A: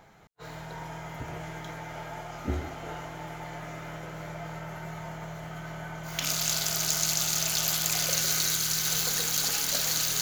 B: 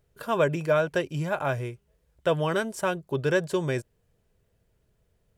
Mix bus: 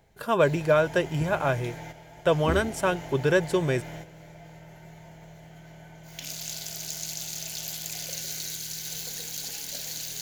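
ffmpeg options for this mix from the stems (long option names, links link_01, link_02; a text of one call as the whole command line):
ffmpeg -i stem1.wav -i stem2.wav -filter_complex "[0:a]equalizer=frequency=1200:width_type=o:width=0.55:gain=-14,bandreject=frequency=1300:width=27,volume=1.5dB[link_01];[1:a]volume=2dB,asplit=2[link_02][link_03];[link_03]apad=whole_len=450318[link_04];[link_01][link_04]sidechaingate=range=-9dB:threshold=-56dB:ratio=16:detection=peak[link_05];[link_05][link_02]amix=inputs=2:normalize=0" out.wav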